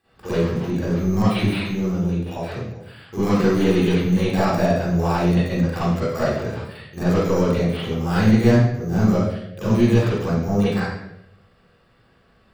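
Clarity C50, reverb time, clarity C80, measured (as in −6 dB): −5.0 dB, 0.80 s, 1.0 dB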